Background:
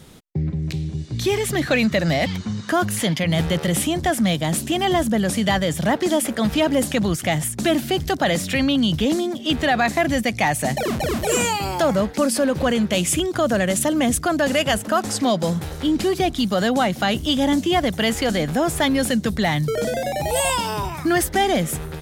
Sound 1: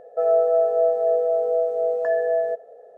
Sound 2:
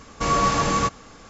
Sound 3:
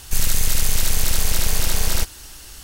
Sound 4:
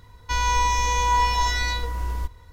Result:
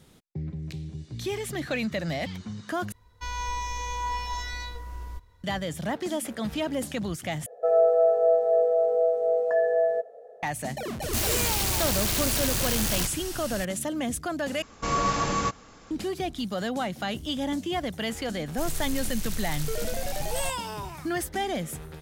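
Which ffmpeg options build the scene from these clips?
ffmpeg -i bed.wav -i cue0.wav -i cue1.wav -i cue2.wav -i cue3.wav -filter_complex "[3:a]asplit=2[link_01][link_02];[0:a]volume=-10.5dB[link_03];[link_01]aeval=exprs='0.531*sin(PI/2*7.08*val(0)/0.531)':channel_layout=same[link_04];[link_03]asplit=4[link_05][link_06][link_07][link_08];[link_05]atrim=end=2.924[link_09];[4:a]atrim=end=2.52,asetpts=PTS-STARTPTS,volume=-10.5dB[link_10];[link_06]atrim=start=5.436:end=7.464[link_11];[1:a]atrim=end=2.97,asetpts=PTS-STARTPTS,volume=-1.5dB[link_12];[link_07]atrim=start=10.426:end=14.624[link_13];[2:a]atrim=end=1.29,asetpts=PTS-STARTPTS,volume=-5dB[link_14];[link_08]atrim=start=15.906[link_15];[link_04]atrim=end=2.63,asetpts=PTS-STARTPTS,volume=-18dB,afade=type=in:duration=0.004:curve=hsin,afade=type=out:start_time=2.626:duration=0.004:curve=hsin,adelay=11020[link_16];[link_02]atrim=end=2.63,asetpts=PTS-STARTPTS,volume=-14.5dB,afade=type=in:duration=0.004:curve=hsin,afade=type=out:start_time=2.626:duration=0.004:curve=hsin,adelay=18460[link_17];[link_09][link_10]acrossfade=duration=0.004:curve1=hsin:curve2=hsin[link_18];[link_18][link_11]acrossfade=duration=0.004:curve1=hsin:curve2=hsin[link_19];[link_19][link_12]acrossfade=duration=0.004:curve1=hsin:curve2=hsin[link_20];[link_20][link_13]acrossfade=duration=0.004:curve1=hsin:curve2=hsin[link_21];[link_21][link_14]acrossfade=duration=0.004:curve1=hsin:curve2=hsin[link_22];[link_22][link_15]acrossfade=duration=0.004:curve1=hsin:curve2=hsin[link_23];[link_23][link_16][link_17]amix=inputs=3:normalize=0" out.wav

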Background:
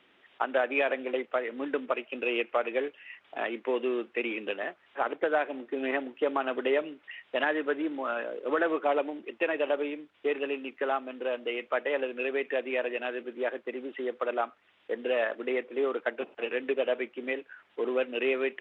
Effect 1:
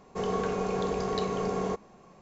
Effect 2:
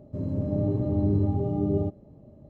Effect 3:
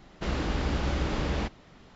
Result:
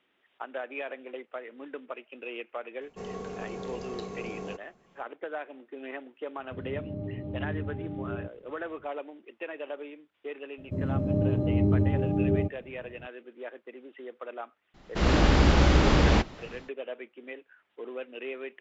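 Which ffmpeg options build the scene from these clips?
ffmpeg -i bed.wav -i cue0.wav -i cue1.wav -i cue2.wav -filter_complex "[2:a]asplit=2[link_01][link_02];[0:a]volume=-9.5dB[link_03];[1:a]equalizer=frequency=1100:width=0.9:gain=-4[link_04];[link_01]aresample=11025,aresample=44100[link_05];[3:a]dynaudnorm=framelen=180:gausssize=3:maxgain=11.5dB[link_06];[link_04]atrim=end=2.21,asetpts=PTS-STARTPTS,volume=-7.5dB,afade=type=in:duration=0.004:curve=hsin,afade=type=out:start_time=2.206:duration=0.004:curve=hsin,adelay=2810[link_07];[link_05]atrim=end=2.49,asetpts=PTS-STARTPTS,volume=-10.5dB,afade=type=in:duration=0.004:curve=hsin,afade=type=out:start_time=2.486:duration=0.004:curve=hsin,adelay=6380[link_08];[link_02]atrim=end=2.49,asetpts=PTS-STARTPTS,afade=type=in:duration=0.004:curve=hsin,afade=type=out:start_time=2.486:duration=0.004:curve=hsin,adelay=466578S[link_09];[link_06]atrim=end=1.95,asetpts=PTS-STARTPTS,volume=-3dB,afade=type=in:duration=0.004:curve=hsin,afade=type=out:start_time=1.946:duration=0.004:curve=hsin,adelay=14740[link_10];[link_03][link_07][link_08][link_09][link_10]amix=inputs=5:normalize=0" out.wav

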